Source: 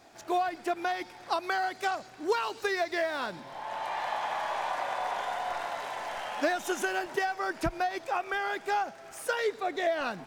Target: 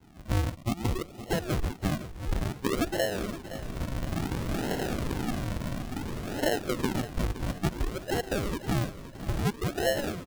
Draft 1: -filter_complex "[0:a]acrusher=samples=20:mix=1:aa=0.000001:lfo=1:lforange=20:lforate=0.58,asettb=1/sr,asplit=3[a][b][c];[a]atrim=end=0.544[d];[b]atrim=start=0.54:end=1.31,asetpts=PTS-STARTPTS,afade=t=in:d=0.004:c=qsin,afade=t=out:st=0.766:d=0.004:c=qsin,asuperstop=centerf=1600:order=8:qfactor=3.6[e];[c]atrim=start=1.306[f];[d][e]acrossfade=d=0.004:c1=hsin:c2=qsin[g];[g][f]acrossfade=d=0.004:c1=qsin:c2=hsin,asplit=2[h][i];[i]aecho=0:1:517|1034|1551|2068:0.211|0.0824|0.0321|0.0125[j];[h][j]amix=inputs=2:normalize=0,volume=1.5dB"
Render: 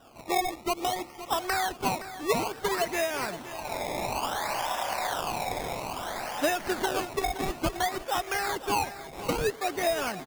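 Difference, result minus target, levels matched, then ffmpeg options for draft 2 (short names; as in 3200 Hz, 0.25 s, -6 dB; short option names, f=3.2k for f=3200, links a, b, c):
decimation with a swept rate: distortion -28 dB
-filter_complex "[0:a]acrusher=samples=73:mix=1:aa=0.000001:lfo=1:lforange=73:lforate=0.58,asettb=1/sr,asplit=3[a][b][c];[a]atrim=end=0.544[d];[b]atrim=start=0.54:end=1.31,asetpts=PTS-STARTPTS,afade=t=in:d=0.004:c=qsin,afade=t=out:st=0.766:d=0.004:c=qsin,asuperstop=centerf=1600:order=8:qfactor=3.6[e];[c]atrim=start=1.306[f];[d][e]acrossfade=d=0.004:c1=hsin:c2=qsin[g];[g][f]acrossfade=d=0.004:c1=qsin:c2=hsin,asplit=2[h][i];[i]aecho=0:1:517|1034|1551|2068:0.211|0.0824|0.0321|0.0125[j];[h][j]amix=inputs=2:normalize=0,volume=1.5dB"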